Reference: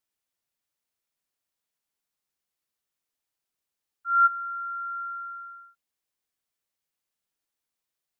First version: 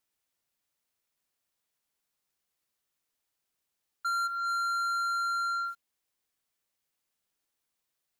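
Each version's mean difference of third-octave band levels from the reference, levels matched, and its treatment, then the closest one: 5.0 dB: dynamic EQ 1400 Hz, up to -4 dB, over -30 dBFS; compressor 8:1, threshold -41 dBFS, peak gain reduction 20 dB; sample leveller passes 3; gain +8.5 dB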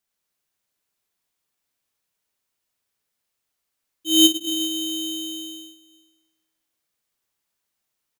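16.0 dB: echo 0.194 s -6 dB; Schroeder reverb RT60 1.1 s, combs from 29 ms, DRR 1.5 dB; polarity switched at an audio rate 1700 Hz; gain +3.5 dB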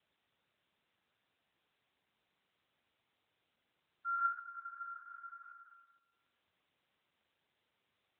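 2.5 dB: in parallel at -11 dB: hard clip -28 dBFS, distortion -3 dB; on the sum: flutter echo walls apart 11.7 m, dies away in 0.77 s; gain -3 dB; AMR-NB 12.2 kbps 8000 Hz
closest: third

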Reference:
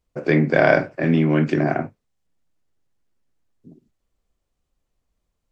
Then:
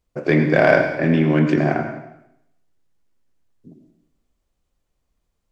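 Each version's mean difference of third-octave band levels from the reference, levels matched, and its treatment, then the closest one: 3.0 dB: in parallel at -8.5 dB: overloaded stage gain 12 dB; on the sum: plate-style reverb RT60 0.78 s, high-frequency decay 1×, pre-delay 75 ms, DRR 6.5 dB; gain -1.5 dB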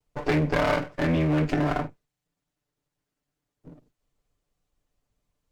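6.0 dB: minimum comb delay 6.8 ms; compressor 3:1, threshold -21 dBFS, peak gain reduction 8 dB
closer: first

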